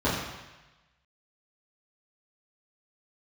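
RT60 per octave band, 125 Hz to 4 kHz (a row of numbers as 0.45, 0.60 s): 1.2, 0.95, 1.0, 1.1, 1.2, 1.2 s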